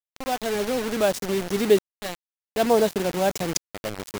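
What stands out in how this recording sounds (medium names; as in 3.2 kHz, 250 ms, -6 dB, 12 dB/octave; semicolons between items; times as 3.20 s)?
tremolo saw up 0.56 Hz, depth 95%; a quantiser's noise floor 6-bit, dither none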